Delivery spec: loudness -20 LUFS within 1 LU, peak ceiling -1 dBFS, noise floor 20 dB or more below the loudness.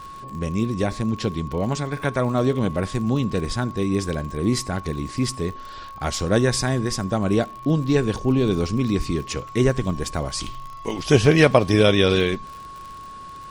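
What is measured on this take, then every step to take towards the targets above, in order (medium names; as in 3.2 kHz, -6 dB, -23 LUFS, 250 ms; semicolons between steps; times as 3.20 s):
tick rate 51 per s; steady tone 1.1 kHz; tone level -36 dBFS; loudness -22.0 LUFS; peak level -2.0 dBFS; loudness target -20.0 LUFS
-> de-click; band-stop 1.1 kHz, Q 30; trim +2 dB; peak limiter -1 dBFS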